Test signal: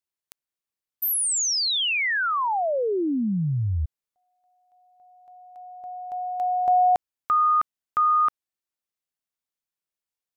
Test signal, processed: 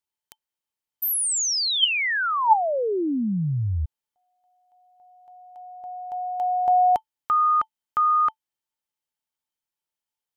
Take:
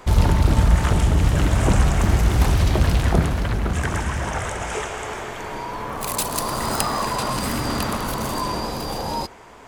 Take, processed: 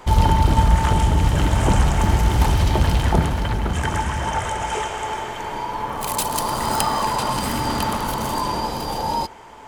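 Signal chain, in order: small resonant body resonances 880/3100 Hz, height 14 dB, ringing for 85 ms

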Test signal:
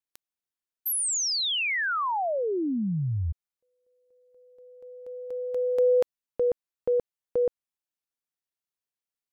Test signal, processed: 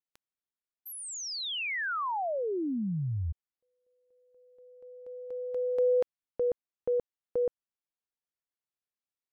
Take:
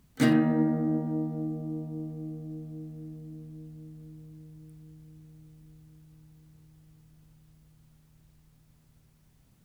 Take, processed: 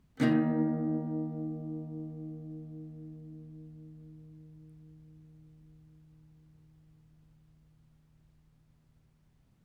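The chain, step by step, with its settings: LPF 3000 Hz 6 dB/oct; gain -4 dB

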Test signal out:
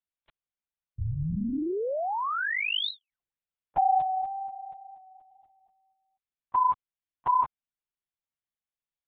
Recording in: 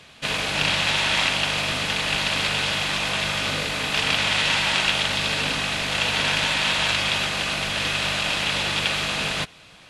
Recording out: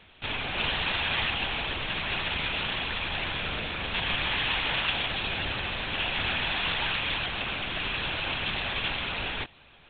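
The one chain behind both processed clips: LPC vocoder at 8 kHz whisper; gain -6 dB

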